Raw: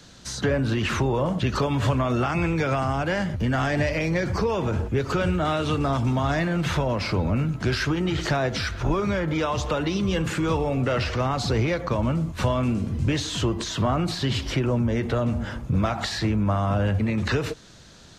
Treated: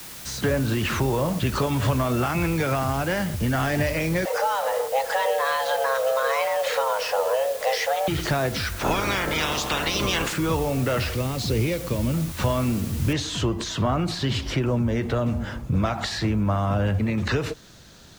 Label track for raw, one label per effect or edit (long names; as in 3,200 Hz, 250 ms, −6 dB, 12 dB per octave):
4.250000	8.080000	frequency shifter +400 Hz
8.780000	10.320000	ceiling on every frequency bin ceiling under each frame's peak by 23 dB
11.130000	12.140000	flat-topped bell 1,100 Hz −9.5 dB
13.130000	13.130000	noise floor change −40 dB −62 dB